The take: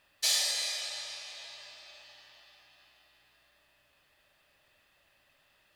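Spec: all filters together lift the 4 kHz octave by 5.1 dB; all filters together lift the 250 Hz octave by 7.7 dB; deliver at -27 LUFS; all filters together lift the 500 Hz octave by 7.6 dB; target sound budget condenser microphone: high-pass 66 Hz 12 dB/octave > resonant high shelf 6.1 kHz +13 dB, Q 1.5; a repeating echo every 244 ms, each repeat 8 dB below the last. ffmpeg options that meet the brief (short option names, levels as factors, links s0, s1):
-af "highpass=66,equalizer=f=250:t=o:g=7,equalizer=f=500:t=o:g=8.5,equalizer=f=4000:t=o:g=7.5,highshelf=f=6100:t=q:w=1.5:g=13,aecho=1:1:244|488|732|976|1220:0.398|0.159|0.0637|0.0255|0.0102,volume=0.473"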